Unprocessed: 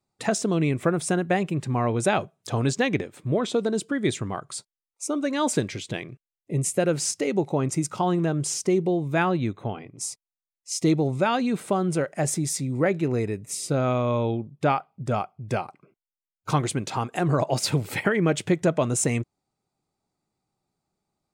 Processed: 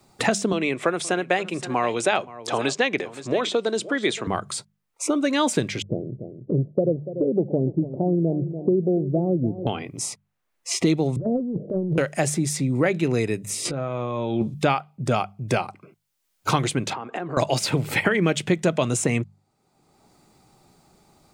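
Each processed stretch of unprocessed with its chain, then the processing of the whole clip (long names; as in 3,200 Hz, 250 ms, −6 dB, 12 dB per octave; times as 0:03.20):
0:00.52–0:04.27: band-pass filter 380–8,000 Hz + single-tap delay 521 ms −18.5 dB
0:05.82–0:09.67: Butterworth low-pass 630 Hz 48 dB per octave + repeating echo 289 ms, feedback 27%, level −15 dB
0:11.16–0:11.98: Butterworth low-pass 610 Hz 72 dB per octave + dynamic equaliser 120 Hz, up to +7 dB, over −47 dBFS, Q 3.5 + compressor whose output falls as the input rises −28 dBFS, ratio −0.5
0:13.65–0:14.54: low-pass filter 8,900 Hz + compressor whose output falls as the input rises −31 dBFS, ratio −0.5 + double-tracking delay 14 ms −8 dB
0:16.93–0:17.37: downward compressor 12 to 1, threshold −35 dBFS + band-pass filter 230–3,100 Hz
whole clip: dynamic equaliser 3,000 Hz, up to +4 dB, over −42 dBFS, Q 1.1; mains-hum notches 50/100/150/200 Hz; multiband upward and downward compressor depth 70%; level +2.5 dB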